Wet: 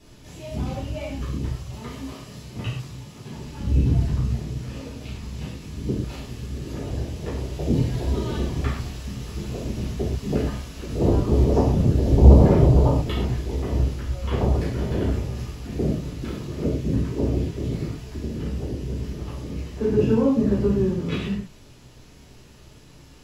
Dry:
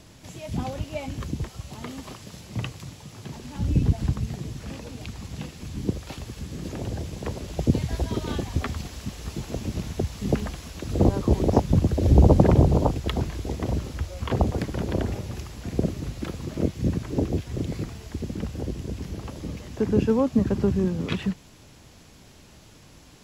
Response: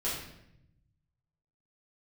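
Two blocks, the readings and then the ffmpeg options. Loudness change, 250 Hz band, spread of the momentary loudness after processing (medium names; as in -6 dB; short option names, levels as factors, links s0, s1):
+2.5 dB, +1.5 dB, 16 LU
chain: -filter_complex "[1:a]atrim=start_sample=2205,atrim=end_sample=6174,asetrate=40131,aresample=44100[s0];[0:a][s0]afir=irnorm=-1:irlink=0,volume=0.501"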